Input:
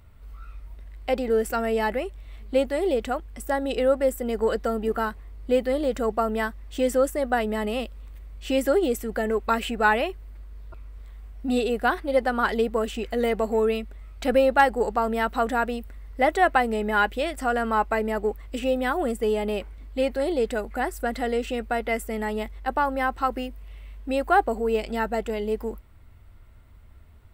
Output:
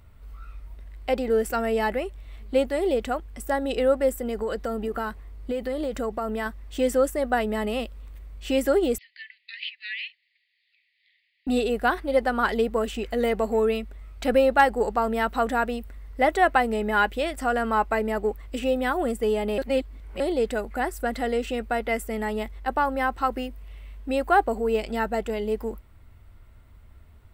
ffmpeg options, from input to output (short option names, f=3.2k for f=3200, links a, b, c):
-filter_complex "[0:a]asettb=1/sr,asplit=3[a][b][c];[a]atrim=end=4.164[d];[b]atrim=start=4.16:end=6.46,asetpts=PTS-STARTPTS,afade=t=in:d=0.004:c=qsin,afade=t=out:st=2.296:d=0.004:c=qsin,acompressor=threshold=-24dB:ratio=6:attack=3.2:release=140:knee=1:detection=peak[e];[c]atrim=start=6.456[f];[d][e]acrossfade=d=0.004:c1=hsin:c2=qsin[g];[g][f]acrossfade=d=0.004:c1=qsin:c2=hsin,asettb=1/sr,asplit=3[h][i][j];[h]atrim=end=8.984[k];[i]atrim=start=8.98:end=11.47,asetpts=PTS-STARTPTS,afade=t=in:d=0.004:c=qsin,afade=t=out:st=2.486:d=0.004:c=qsin,asuperpass=centerf=3000:order=20:qfactor=0.99[l];[j]atrim=start=11.466[m];[k][l]acrossfade=d=0.004:c1=hsin:c2=qsin[n];[n][m]acrossfade=d=0.004:c1=qsin:c2=hsin,asplit=3[o][p][q];[o]atrim=end=19.582[r];[p]atrim=start=19.578:end=20.202,asetpts=PTS-STARTPTS,areverse[s];[q]atrim=start=20.198[t];[r][s]acrossfade=d=0.004:c1=hsin:c2=hsin[u];[u][t]acrossfade=d=0.004:c1=hsin:c2=hsin"